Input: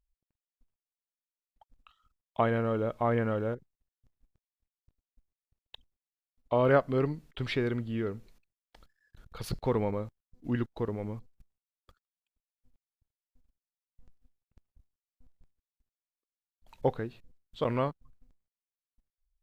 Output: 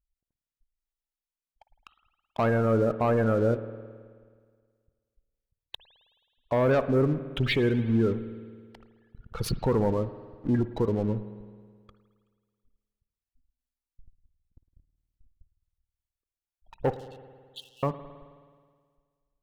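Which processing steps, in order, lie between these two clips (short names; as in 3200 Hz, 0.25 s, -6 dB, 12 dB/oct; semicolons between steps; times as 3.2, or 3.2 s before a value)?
spectral gate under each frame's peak -20 dB strong; sample leveller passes 2; limiter -19.5 dBFS, peak gain reduction 6.5 dB; 16.93–17.83 brick-wall FIR high-pass 2600 Hz; spring tank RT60 1.8 s, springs 53 ms, chirp 70 ms, DRR 12 dB; gain +1.5 dB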